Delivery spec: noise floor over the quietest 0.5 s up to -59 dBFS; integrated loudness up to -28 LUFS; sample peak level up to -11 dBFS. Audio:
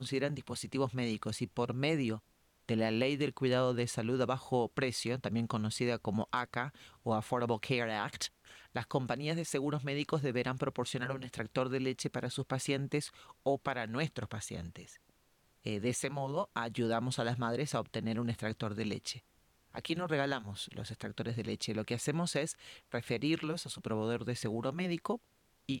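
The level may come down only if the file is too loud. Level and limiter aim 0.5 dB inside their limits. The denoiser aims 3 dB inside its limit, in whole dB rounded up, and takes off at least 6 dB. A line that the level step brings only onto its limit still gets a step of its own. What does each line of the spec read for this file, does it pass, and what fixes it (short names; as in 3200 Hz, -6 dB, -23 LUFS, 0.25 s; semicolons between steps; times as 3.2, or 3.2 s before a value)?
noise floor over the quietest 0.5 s -71 dBFS: OK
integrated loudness -36.0 LUFS: OK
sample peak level -20.0 dBFS: OK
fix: none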